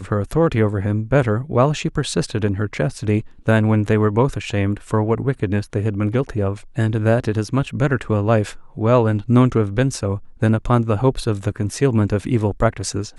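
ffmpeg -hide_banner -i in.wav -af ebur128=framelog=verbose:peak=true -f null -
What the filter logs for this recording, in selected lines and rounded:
Integrated loudness:
  I:         -19.5 LUFS
  Threshold: -29.5 LUFS
Loudness range:
  LRA:         2.3 LU
  Threshold: -39.5 LUFS
  LRA low:   -20.7 LUFS
  LRA high:  -18.4 LUFS
True peak:
  Peak:       -2.4 dBFS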